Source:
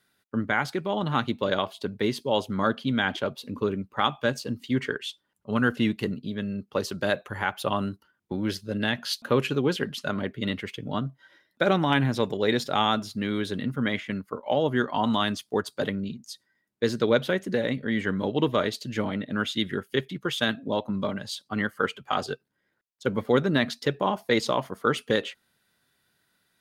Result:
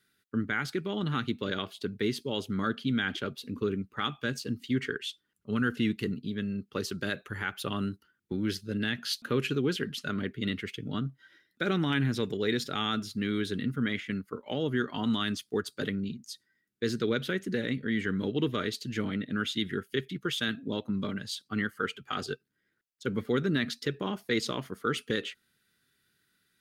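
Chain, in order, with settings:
flat-topped bell 750 Hz −11 dB 1.2 octaves
in parallel at +2 dB: brickwall limiter −18.5 dBFS, peak gain reduction 8.5 dB
on the sum: level −9 dB

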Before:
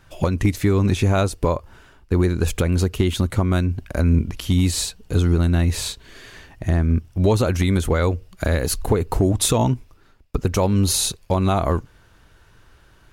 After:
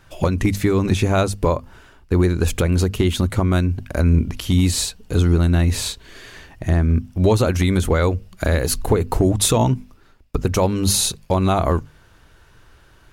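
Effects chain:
mains-hum notches 50/100/150/200/250 Hz
level +2 dB

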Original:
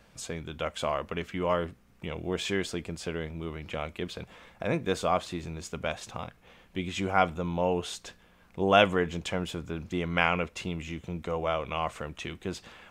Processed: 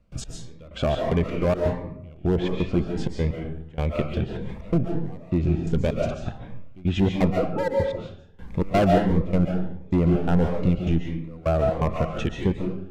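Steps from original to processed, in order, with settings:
0:07.30–0:07.76: three sine waves on the formant tracks
treble cut that deepens with the level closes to 970 Hz, closed at −24.5 dBFS
spectral tilt −3 dB per octave
in parallel at 0 dB: downward compressor, threshold −42 dBFS, peak gain reduction 24.5 dB
on the sum: hard clipping −21.5 dBFS, distortion −9 dB
gate pattern ".x....xx.xx.x" 127 BPM −24 dB
comb and all-pass reverb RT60 0.68 s, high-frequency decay 0.7×, pre-delay 100 ms, DRR 1.5 dB
phaser whose notches keep moving one way rising 1.5 Hz
level +6.5 dB

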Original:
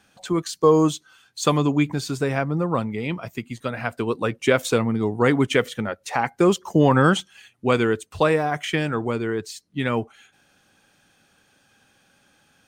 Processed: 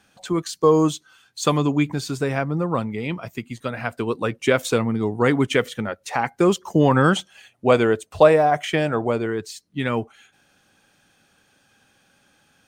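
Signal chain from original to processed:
0:07.16–0:09.26: parametric band 640 Hz +10 dB 0.7 octaves

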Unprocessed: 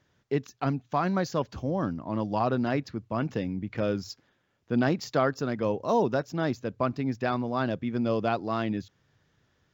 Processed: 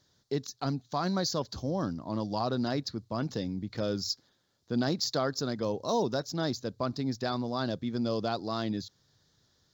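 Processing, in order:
high shelf with overshoot 3,300 Hz +8 dB, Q 3
in parallel at 0 dB: brickwall limiter −19 dBFS, peak gain reduction 7 dB
on the sum: level −8.5 dB

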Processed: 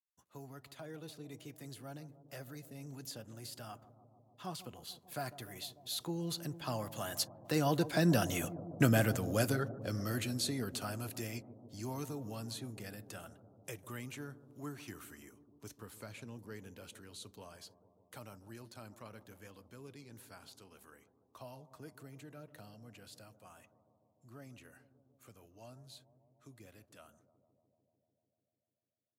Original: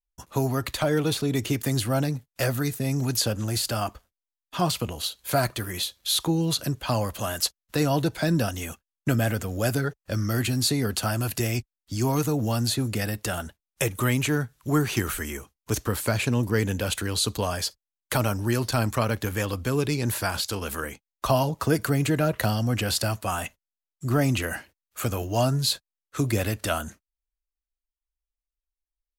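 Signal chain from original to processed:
source passing by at 0:08.62, 11 m/s, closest 7.2 metres
high-pass filter 110 Hz
on a send: bucket-brigade delay 148 ms, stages 1,024, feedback 79%, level −15 dB
on the sum: level −2.5 dB

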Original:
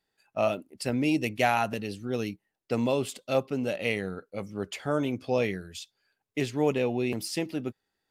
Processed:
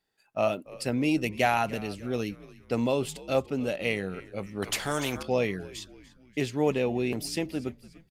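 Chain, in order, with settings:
on a send: echo with shifted repeats 291 ms, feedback 48%, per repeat −82 Hz, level −19.5 dB
0:04.62–0:05.23: on the sum: every bin compressed towards the loudest bin 2 to 1

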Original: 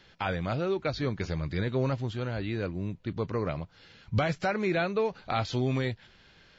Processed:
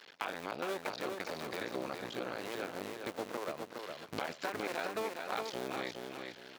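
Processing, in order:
sub-harmonics by changed cycles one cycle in 2, muted
high-pass filter 380 Hz 12 dB per octave
downward compressor 2.5 to 1, threshold −46 dBFS, peak gain reduction 13 dB
repeating echo 413 ms, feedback 32%, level −5 dB
level +6 dB

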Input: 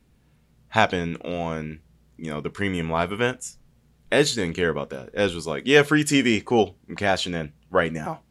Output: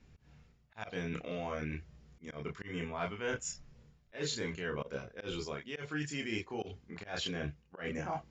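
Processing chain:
reversed playback
downward compressor 12 to 1, threshold −33 dBFS, peak gain reduction 23 dB
reversed playback
Chebyshev low-pass with heavy ripple 7,200 Hz, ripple 3 dB
multi-voice chorus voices 6, 0.48 Hz, delay 28 ms, depth 1.5 ms
volume swells 132 ms
level +4.5 dB

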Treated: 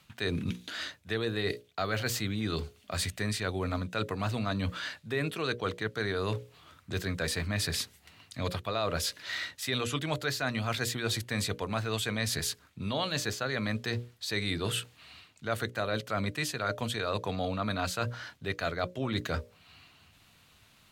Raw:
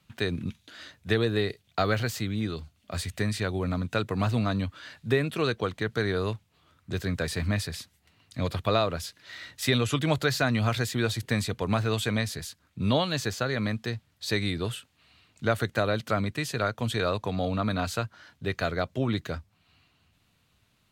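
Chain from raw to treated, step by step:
low-shelf EQ 460 Hz −5 dB
mains-hum notches 60/120/180/240/300/360/420/480/540/600 Hz
reversed playback
downward compressor 6 to 1, threshold −38 dBFS, peak gain reduction 16.5 dB
reversed playback
level +9 dB

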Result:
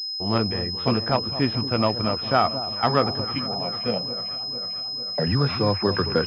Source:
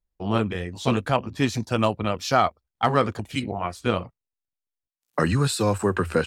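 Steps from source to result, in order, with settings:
0:03.38–0:05.27: phaser with its sweep stopped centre 320 Hz, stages 6
delay that swaps between a low-pass and a high-pass 224 ms, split 990 Hz, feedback 79%, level −11.5 dB
switching amplifier with a slow clock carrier 5,100 Hz

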